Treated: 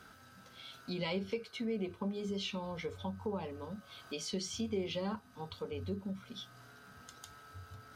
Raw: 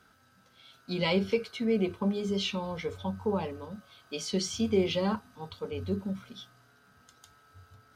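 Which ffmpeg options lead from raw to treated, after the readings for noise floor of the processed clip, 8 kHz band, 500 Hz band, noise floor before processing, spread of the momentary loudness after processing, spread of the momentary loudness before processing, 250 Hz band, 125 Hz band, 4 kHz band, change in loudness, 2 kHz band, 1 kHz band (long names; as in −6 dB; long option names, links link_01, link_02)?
−59 dBFS, −5.5 dB, −8.5 dB, −63 dBFS, 16 LU, 14 LU, −8.0 dB, −7.5 dB, −6.5 dB, −8.5 dB, −7.5 dB, −7.0 dB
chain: -af "acompressor=threshold=-52dB:ratio=2,volume=5.5dB"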